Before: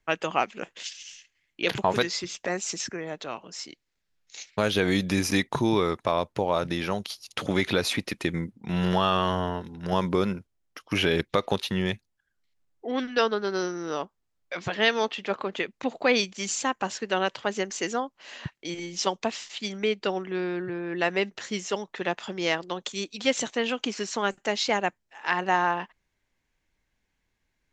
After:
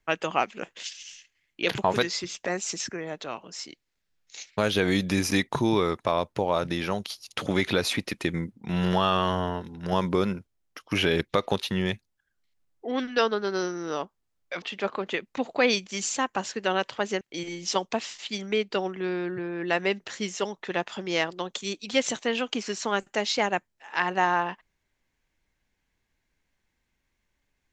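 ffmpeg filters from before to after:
-filter_complex "[0:a]asplit=3[a][b][c];[a]atrim=end=14.622[d];[b]atrim=start=15.078:end=17.672[e];[c]atrim=start=18.518[f];[d][e]acrossfade=d=0.004:c1=hsin:c2=hsin[g];[g][f]acrossfade=d=0.004:c1=hsin:c2=hsin"

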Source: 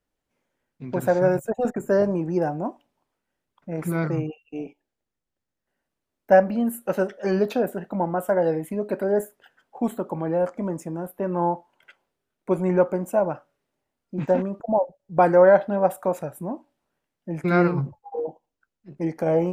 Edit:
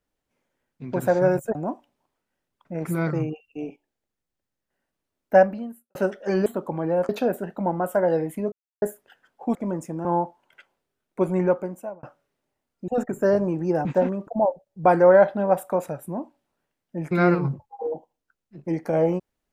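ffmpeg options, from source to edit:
-filter_complex "[0:a]asplit=12[a][b][c][d][e][f][g][h][i][j][k][l];[a]atrim=end=1.552[m];[b]atrim=start=2.518:end=6.92,asetpts=PTS-STARTPTS,afade=t=out:st=3.852:d=0.55:c=qua[n];[c]atrim=start=6.92:end=7.432,asetpts=PTS-STARTPTS,afade=t=in:d=0.004:c=hsin[o];[d]atrim=start=9.888:end=10.522[p];[e]atrim=start=7.428:end=8.86,asetpts=PTS-STARTPTS,afade=t=out:st=1.428:d=0.004:c=hsin[q];[f]atrim=start=8.86:end=9.16,asetpts=PTS-STARTPTS,volume=0[r];[g]atrim=start=9.16:end=9.892,asetpts=PTS-STARTPTS,afade=t=in:d=0.004:c=hsin[s];[h]atrim=start=10.518:end=11.022[t];[i]atrim=start=11.348:end=13.33,asetpts=PTS-STARTPTS,afade=t=out:st=1.322:d=0.66[u];[j]atrim=start=13.33:end=14.182,asetpts=PTS-STARTPTS,afade=t=in:d=0.004:c=hsin[v];[k]atrim=start=1.548:end=2.522[w];[l]atrim=start=14.178[x];[n][o]concat=n=2:v=0:a=1[y];[m][y]acrossfade=d=0.004:c1=hsin:c2=hsin[z];[z][p]acrossfade=d=0.004:c1=hsin:c2=hsin[aa];[q][r][s]concat=n=3:v=0:a=1[ab];[aa][ab]acrossfade=d=0.004:c1=hsin:c2=hsin[ac];[ac][t]acrossfade=d=0.004:c1=hsin:c2=hsin[ad];[u][v]concat=n=2:v=0:a=1[ae];[ad][ae]acrossfade=d=0.004:c1=hsin:c2=hsin[af];[af][w]acrossfade=d=0.004:c1=hsin:c2=hsin[ag];[ag][x]acrossfade=d=0.004:c1=hsin:c2=hsin"

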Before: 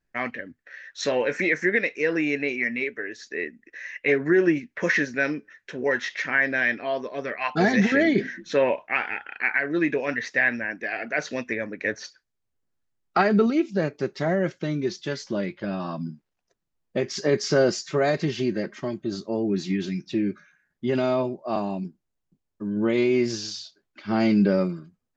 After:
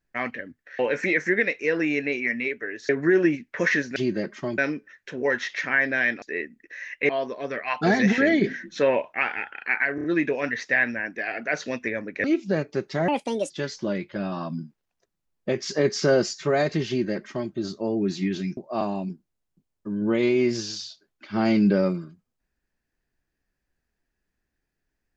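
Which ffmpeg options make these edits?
-filter_complex "[0:a]asplit=14[a][b][c][d][e][f][g][h][i][j][k][l][m][n];[a]atrim=end=0.792[o];[b]atrim=start=1.148:end=3.252[p];[c]atrim=start=4.118:end=5.192[q];[d]atrim=start=18.358:end=18.982[r];[e]atrim=start=5.188:end=6.832[s];[f]atrim=start=3.248:end=4.122[t];[g]atrim=start=6.828:end=9.722[u];[h]atrim=start=9.688:end=9.722[v];[i]atrim=start=9.688:end=9.722[w];[j]atrim=start=9.688:end=11.892[x];[k]atrim=start=13.498:end=14.344[y];[l]atrim=start=14.34:end=14.98,asetpts=PTS-STARTPTS,asetrate=67032,aresample=44100,atrim=end_sample=18568,asetpts=PTS-STARTPTS[z];[m]atrim=start=14.976:end=20.052[aa];[n]atrim=start=21.318[ab];[o][p]acrossfade=d=0.004:c1=hsin:c2=hsin[ac];[ac][q]acrossfade=d=0.004:c1=hsin:c2=hsin[ad];[ad][r]acrossfade=d=0.004:c1=hsin:c2=hsin[ae];[ae][s]acrossfade=d=0.004:c1=hsin:c2=hsin[af];[af][t]acrossfade=d=0.004:c1=hsin:c2=hsin[ag];[ag][u]acrossfade=d=0.004:c1=hsin:c2=hsin[ah];[ah][v]acrossfade=d=0.004:c1=hsin:c2=hsin[ai];[ai][w]acrossfade=d=0.004:c1=hsin:c2=hsin[aj];[aj][x]acrossfade=d=0.004:c1=hsin:c2=hsin[ak];[ak][y]acrossfade=d=0.004:c1=hsin:c2=hsin[al];[al][z]acrossfade=d=0.004:c1=hsin:c2=hsin[am];[am][aa]acrossfade=d=0.004:c1=hsin:c2=hsin[an];[an][ab]acrossfade=d=0.004:c1=hsin:c2=hsin"

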